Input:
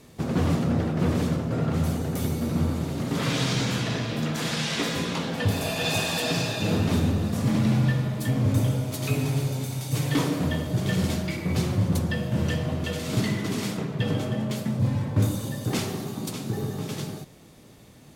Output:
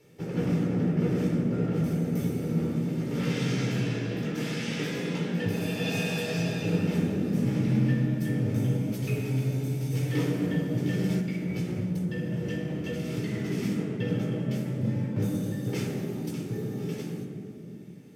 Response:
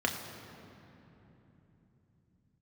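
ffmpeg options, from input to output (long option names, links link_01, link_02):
-filter_complex "[1:a]atrim=start_sample=2205,asetrate=79380,aresample=44100[link_01];[0:a][link_01]afir=irnorm=-1:irlink=0,asettb=1/sr,asplit=3[link_02][link_03][link_04];[link_02]atrim=end=11.194[link_05];[link_03]atrim=start=11.19:end=13.34,asetpts=PTS-STARTPTS,afade=type=in:duration=0.004:curve=qsin,afade=type=out:start_time=2.146:duration=0.004:curve=qsin,acompressor=threshold=-19dB:ratio=6[link_06];[link_04]atrim=start=13.336[link_07];[link_05][link_06]acrossfade=duration=0.004:curve1=hsin:curve2=qsin[link_08];[link_08][link_07]acrossfade=duration=0.004:curve1=qsin:curve2=hsin,equalizer=frequency=1000:width_type=o:width=1:gain=-10,equalizer=frequency=2000:width_type=o:width=1:gain=5,equalizer=frequency=4000:width_type=o:width=1:gain=-9,volume=-7dB"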